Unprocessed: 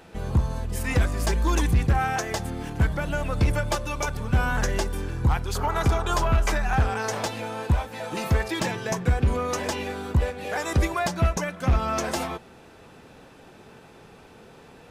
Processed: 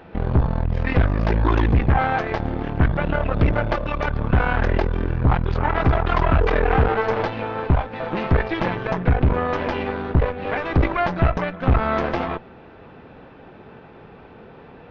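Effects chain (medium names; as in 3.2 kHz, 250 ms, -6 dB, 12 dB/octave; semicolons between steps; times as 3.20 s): in parallel at -0.5 dB: peak limiter -22.5 dBFS, peak gain reduction 9 dB; 6.40–7.21 s: on the sum: whistle 450 Hz -23 dBFS; Chebyshev shaper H 4 -9 dB, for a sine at -9 dBFS; Gaussian low-pass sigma 2.9 samples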